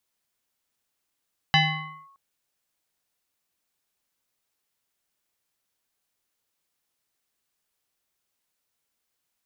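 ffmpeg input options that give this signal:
-f lavfi -i "aevalsrc='0.211*pow(10,-3*t/0.88)*sin(2*PI*1100*t+2.8*clip(1-t/0.54,0,1)*sin(2*PI*0.86*1100*t))':d=0.62:s=44100"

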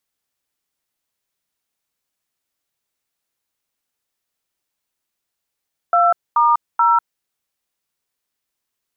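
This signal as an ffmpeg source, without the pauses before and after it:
-f lavfi -i "aevalsrc='0.211*clip(min(mod(t,0.431),0.196-mod(t,0.431))/0.002,0,1)*(eq(floor(t/0.431),0)*(sin(2*PI*697*mod(t,0.431))+sin(2*PI*1336*mod(t,0.431)))+eq(floor(t/0.431),1)*(sin(2*PI*941*mod(t,0.431))+sin(2*PI*1209*mod(t,0.431)))+eq(floor(t/0.431),2)*(sin(2*PI*941*mod(t,0.431))+sin(2*PI*1336*mod(t,0.431))))':d=1.293:s=44100"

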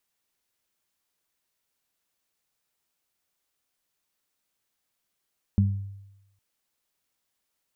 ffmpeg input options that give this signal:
-f lavfi -i "aevalsrc='0.15*pow(10,-3*t/0.93)*sin(2*PI*98.9*t)+0.119*pow(10,-3*t/0.38)*sin(2*PI*197.8*t)':d=0.81:s=44100"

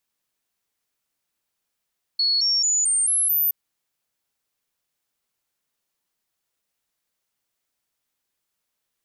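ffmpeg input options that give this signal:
-f lavfi -i "aevalsrc='0.133*clip(min(mod(t,0.22),0.22-mod(t,0.22))/0.005,0,1)*sin(2*PI*4370*pow(2,floor(t/0.22)/3)*mod(t,0.22))':d=1.32:s=44100"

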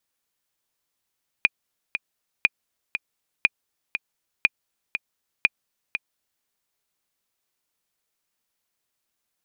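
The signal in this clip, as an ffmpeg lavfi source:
-f lavfi -i "aevalsrc='pow(10,(-3-9.5*gte(mod(t,2*60/120),60/120))/20)*sin(2*PI*2440*mod(t,60/120))*exp(-6.91*mod(t,60/120)/0.03)':d=5:s=44100"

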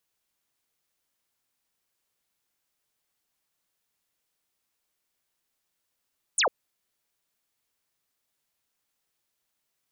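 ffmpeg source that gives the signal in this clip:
-f lavfi -i "aevalsrc='0.1*clip(t/0.002,0,1)*clip((0.1-t)/0.002,0,1)*sin(2*PI*10000*0.1/log(420/10000)*(exp(log(420/10000)*t/0.1)-1))':d=0.1:s=44100"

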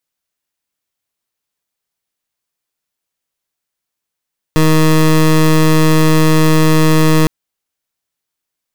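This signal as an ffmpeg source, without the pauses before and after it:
-f lavfi -i "aevalsrc='0.355*(2*lt(mod(157*t,1),0.21)-1)':d=2.71:s=44100"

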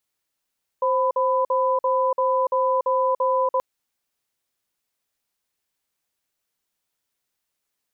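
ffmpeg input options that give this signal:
-f lavfi -i "aevalsrc='0.0944*(sin(2*PI*524*t)+sin(2*PI*1000*t))*clip(min(mod(t,0.34),0.29-mod(t,0.34))/0.005,0,1)':d=2.78:s=44100"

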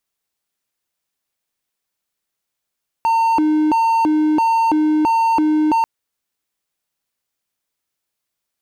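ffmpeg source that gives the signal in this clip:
-f lavfi -i "aevalsrc='0.299*(1-4*abs(mod((608*t+301/1.5*(0.5-abs(mod(1.5*t,1)-0.5)))+0.25,1)-0.5))':d=2.79:s=44100"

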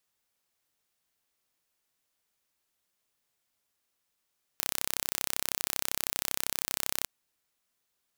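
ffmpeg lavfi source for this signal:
-f lavfi -i "aevalsrc='0.75*eq(mod(n,1349),0)':d=2.46:s=44100"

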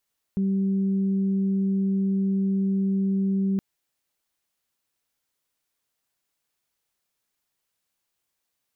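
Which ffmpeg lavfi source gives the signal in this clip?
-f lavfi -i "aevalsrc='0.0944*sin(2*PI*194*t)+0.0158*sin(2*PI*388*t)':d=3.22:s=44100"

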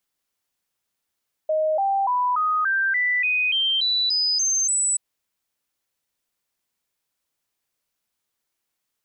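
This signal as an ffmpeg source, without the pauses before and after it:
-f lavfi -i "aevalsrc='0.119*clip(min(mod(t,0.29),0.29-mod(t,0.29))/0.005,0,1)*sin(2*PI*624*pow(2,floor(t/0.29)/3)*mod(t,0.29))':d=3.48:s=44100"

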